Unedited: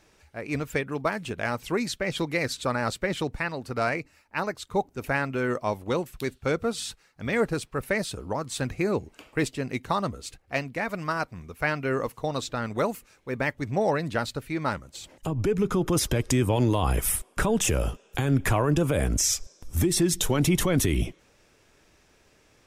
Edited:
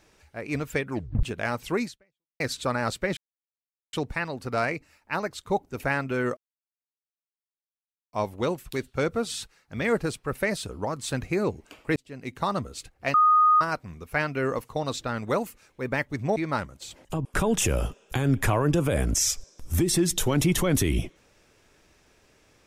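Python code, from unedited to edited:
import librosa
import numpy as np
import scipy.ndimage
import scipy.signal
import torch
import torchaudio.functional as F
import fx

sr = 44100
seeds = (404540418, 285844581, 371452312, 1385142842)

y = fx.edit(x, sr, fx.tape_stop(start_s=0.89, length_s=0.34),
    fx.fade_out_span(start_s=1.84, length_s=0.56, curve='exp'),
    fx.insert_silence(at_s=3.17, length_s=0.76),
    fx.insert_silence(at_s=5.61, length_s=1.76),
    fx.fade_in_span(start_s=9.44, length_s=0.55),
    fx.bleep(start_s=10.62, length_s=0.47, hz=1240.0, db=-15.0),
    fx.cut(start_s=13.84, length_s=0.65),
    fx.cut(start_s=15.38, length_s=1.9), tone=tone)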